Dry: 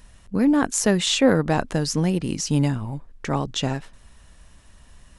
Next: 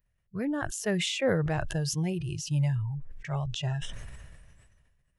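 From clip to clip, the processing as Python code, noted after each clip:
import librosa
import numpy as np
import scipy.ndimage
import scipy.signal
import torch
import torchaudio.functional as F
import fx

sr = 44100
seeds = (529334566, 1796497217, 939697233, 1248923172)

y = fx.noise_reduce_blind(x, sr, reduce_db=21)
y = fx.graphic_eq(y, sr, hz=(125, 250, 500, 1000, 2000, 4000, 8000), db=(8, -7, 3, -6, 5, -7, -7))
y = fx.sustainer(y, sr, db_per_s=31.0)
y = y * librosa.db_to_amplitude(-8.5)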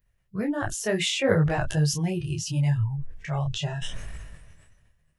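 y = fx.detune_double(x, sr, cents=25)
y = y * librosa.db_to_amplitude(8.0)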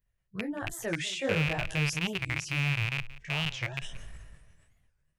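y = fx.rattle_buzz(x, sr, strikes_db=-28.0, level_db=-11.0)
y = y + 10.0 ** (-18.0 / 20.0) * np.pad(y, (int(178 * sr / 1000.0), 0))[:len(y)]
y = fx.record_warp(y, sr, rpm=45.0, depth_cents=250.0)
y = y * librosa.db_to_amplitude(-8.0)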